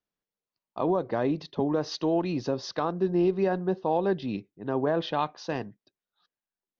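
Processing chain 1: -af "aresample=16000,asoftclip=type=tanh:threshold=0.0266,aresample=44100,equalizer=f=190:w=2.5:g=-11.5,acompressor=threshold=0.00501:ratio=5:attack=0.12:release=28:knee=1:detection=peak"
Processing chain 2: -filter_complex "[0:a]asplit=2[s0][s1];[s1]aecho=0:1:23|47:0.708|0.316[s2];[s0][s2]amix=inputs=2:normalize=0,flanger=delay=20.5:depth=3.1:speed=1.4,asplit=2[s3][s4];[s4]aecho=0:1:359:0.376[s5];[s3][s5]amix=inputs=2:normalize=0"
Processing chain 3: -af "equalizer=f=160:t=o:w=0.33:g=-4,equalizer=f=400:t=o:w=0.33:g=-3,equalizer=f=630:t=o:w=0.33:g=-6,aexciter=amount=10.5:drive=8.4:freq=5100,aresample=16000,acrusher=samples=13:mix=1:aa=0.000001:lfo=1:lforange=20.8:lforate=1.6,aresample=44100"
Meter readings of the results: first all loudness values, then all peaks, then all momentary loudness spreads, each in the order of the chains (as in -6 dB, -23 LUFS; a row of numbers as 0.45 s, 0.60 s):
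-48.5 LUFS, -28.5 LUFS, -29.0 LUFS; -42.0 dBFS, -12.0 dBFS, -11.5 dBFS; 5 LU, 10 LU, 8 LU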